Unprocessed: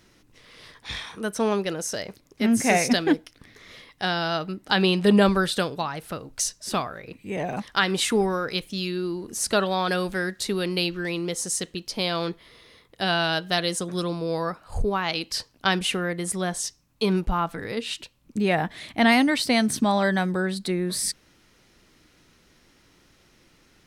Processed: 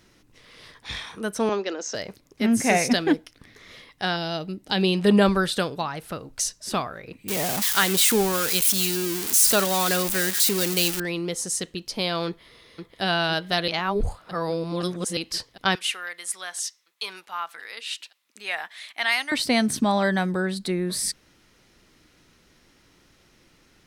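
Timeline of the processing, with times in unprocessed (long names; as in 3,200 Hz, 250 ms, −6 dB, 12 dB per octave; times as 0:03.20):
0:01.49–0:01.95: Chebyshev band-pass filter 220–7,000 Hz, order 5
0:04.16–0:04.95: parametric band 1,300 Hz −9.5 dB 1.2 octaves
0:07.28–0:11.00: spike at every zero crossing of −13.5 dBFS
0:12.27–0:13.02: delay throw 510 ms, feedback 80%, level −6.5 dB
0:13.68–0:15.17: reverse
0:15.75–0:19.32: high-pass filter 1,300 Hz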